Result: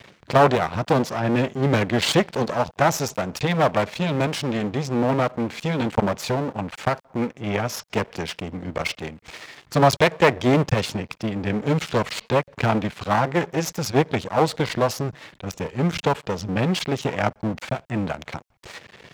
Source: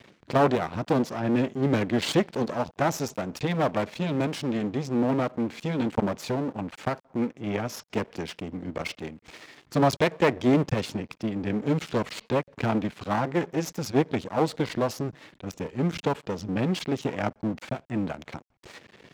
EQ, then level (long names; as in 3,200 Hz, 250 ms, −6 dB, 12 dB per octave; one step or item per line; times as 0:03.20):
parametric band 280 Hz −7 dB 1.2 octaves
+7.5 dB